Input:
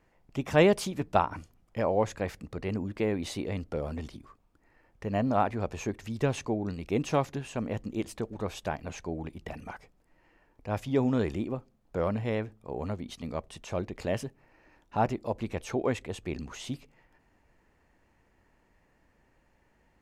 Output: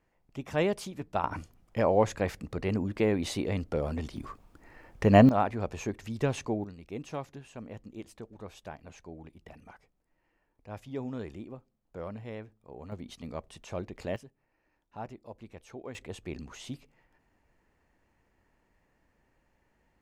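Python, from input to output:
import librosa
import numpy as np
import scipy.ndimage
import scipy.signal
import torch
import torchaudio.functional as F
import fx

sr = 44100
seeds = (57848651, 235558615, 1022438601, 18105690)

y = fx.gain(x, sr, db=fx.steps((0.0, -6.5), (1.24, 2.5), (4.17, 11.0), (5.29, -1.0), (6.64, -10.5), (12.92, -4.0), (14.16, -14.0), (15.95, -4.0)))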